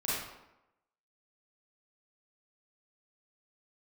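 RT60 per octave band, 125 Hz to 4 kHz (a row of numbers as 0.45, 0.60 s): 0.75, 0.90, 0.90, 0.90, 0.75, 0.60 s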